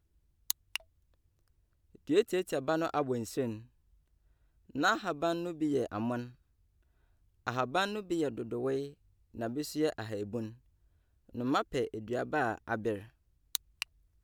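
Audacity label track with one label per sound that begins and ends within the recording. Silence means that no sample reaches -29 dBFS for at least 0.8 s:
2.100000	3.510000	sound
4.770000	6.200000	sound
7.470000	10.400000	sound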